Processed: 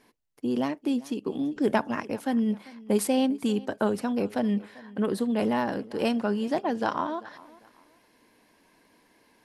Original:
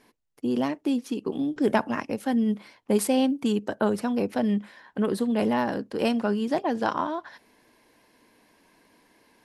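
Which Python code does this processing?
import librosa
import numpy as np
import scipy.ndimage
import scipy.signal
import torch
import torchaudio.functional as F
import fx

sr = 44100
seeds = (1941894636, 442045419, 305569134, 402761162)

y = fx.echo_feedback(x, sr, ms=394, feedback_pct=31, wet_db=-21)
y = F.gain(torch.from_numpy(y), -1.5).numpy()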